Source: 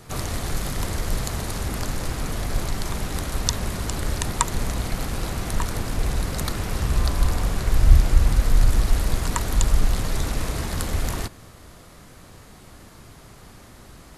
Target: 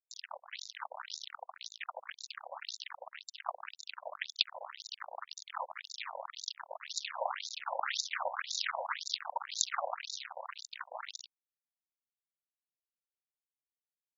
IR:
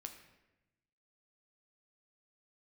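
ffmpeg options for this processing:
-af "aeval=exprs='val(0)*gte(abs(val(0)),0.0944)':c=same,aeval=exprs='0.891*(cos(1*acos(clip(val(0)/0.891,-1,1)))-cos(1*PI/2))+0.126*(cos(6*acos(clip(val(0)/0.891,-1,1)))-cos(6*PI/2))+0.178*(cos(7*acos(clip(val(0)/0.891,-1,1)))-cos(7*PI/2))':c=same,afftfilt=real='re*between(b*sr/1024,690*pow(5200/690,0.5+0.5*sin(2*PI*1.9*pts/sr))/1.41,690*pow(5200/690,0.5+0.5*sin(2*PI*1.9*pts/sr))*1.41)':imag='im*between(b*sr/1024,690*pow(5200/690,0.5+0.5*sin(2*PI*1.9*pts/sr))/1.41,690*pow(5200/690,0.5+0.5*sin(2*PI*1.9*pts/sr))*1.41)':win_size=1024:overlap=0.75,volume=2.5dB"

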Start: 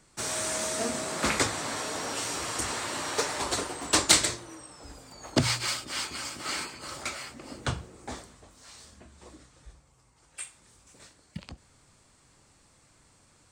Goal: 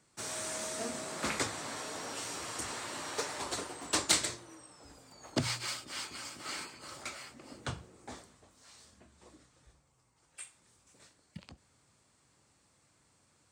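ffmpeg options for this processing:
-af "highpass=76,volume=-7.5dB"

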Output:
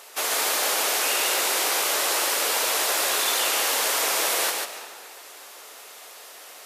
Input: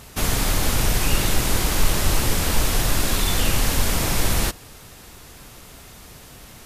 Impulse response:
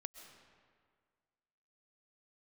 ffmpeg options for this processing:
-filter_complex "[0:a]highpass=f=450:w=0.5412,highpass=f=450:w=1.3066,asplit=2[a][b];[1:a]atrim=start_sample=2205,adelay=142[c];[b][c]afir=irnorm=-1:irlink=0,volume=2dB[d];[a][d]amix=inputs=2:normalize=0"

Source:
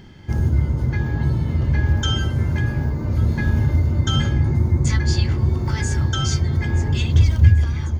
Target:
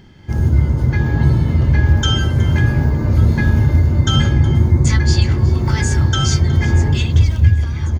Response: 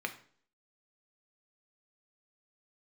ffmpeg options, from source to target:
-af "aecho=1:1:367:0.119,dynaudnorm=f=140:g=5:m=11.5dB,volume=-1dB"

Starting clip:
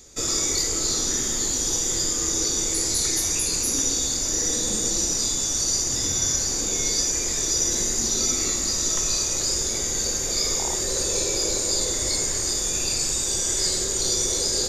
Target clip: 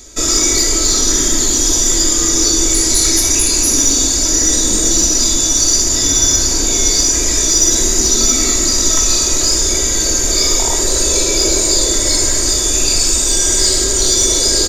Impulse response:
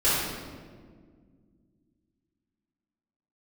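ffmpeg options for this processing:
-filter_complex "[0:a]aecho=1:1:3.1:0.52,asplit=2[a][b];[1:a]atrim=start_sample=2205[c];[b][c]afir=irnorm=-1:irlink=0,volume=-21dB[d];[a][d]amix=inputs=2:normalize=0,acontrast=62,volume=2dB"

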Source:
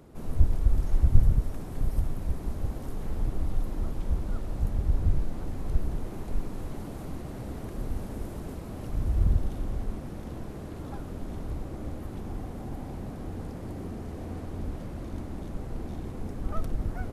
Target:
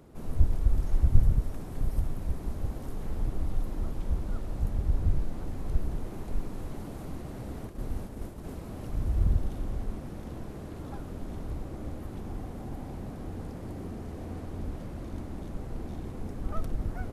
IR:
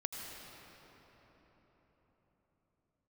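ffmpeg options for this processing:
-filter_complex "[0:a]asplit=3[a][b][c];[a]afade=t=out:st=7.66:d=0.02[d];[b]agate=range=-33dB:threshold=-31dB:ratio=3:detection=peak,afade=t=in:st=7.66:d=0.02,afade=t=out:st=8.43:d=0.02[e];[c]afade=t=in:st=8.43:d=0.02[f];[d][e][f]amix=inputs=3:normalize=0,volume=-1.5dB"

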